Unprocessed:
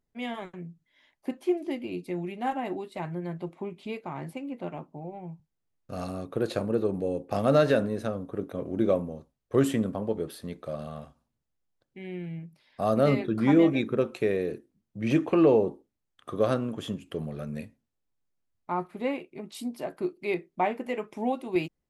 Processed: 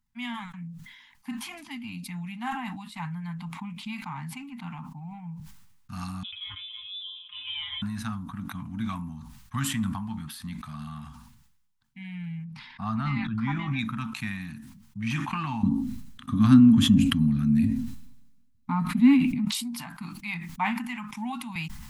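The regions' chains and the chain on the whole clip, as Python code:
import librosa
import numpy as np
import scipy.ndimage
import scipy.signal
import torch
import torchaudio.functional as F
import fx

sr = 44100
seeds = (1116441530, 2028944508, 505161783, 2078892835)

y = fx.chain(x, sr, fx.low_shelf(hz=430.0, db=-5.5),
    fx.comb_fb(f0_hz=190.0, decay_s=0.24, harmonics='all', damping=0.0, mix_pct=100),
    fx.freq_invert(carrier_hz=3700), at=(6.23, 7.82))
y = fx.chain(y, sr, fx.spacing_loss(db_at_10k=21),
    fx.sustainer(db_per_s=33.0), at=(12.44, 13.79))
y = fx.chain(y, sr, fx.low_shelf_res(hz=500.0, db=11.0, q=1.5),
    fx.small_body(hz=(260.0, 540.0, 4000.0), ring_ms=70, db=12), at=(15.63, 19.45))
y = scipy.signal.sosfilt(scipy.signal.ellip(3, 1.0, 50, [230.0, 900.0], 'bandstop', fs=sr, output='sos'), y)
y = fx.dynamic_eq(y, sr, hz=190.0, q=1.2, threshold_db=-36.0, ratio=4.0, max_db=-5)
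y = fx.sustainer(y, sr, db_per_s=46.0)
y = F.gain(torch.from_numpy(y), 3.0).numpy()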